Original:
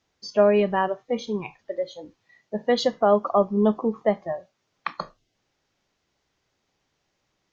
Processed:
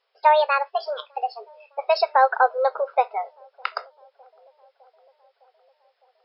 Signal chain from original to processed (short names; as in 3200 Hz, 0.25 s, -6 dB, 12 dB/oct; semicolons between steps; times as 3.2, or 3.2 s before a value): speed glide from 151% -> 90%; brick-wall FIR band-pass 400–5400 Hz; dark delay 0.608 s, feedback 66%, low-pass 560 Hz, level -23.5 dB; gain +2.5 dB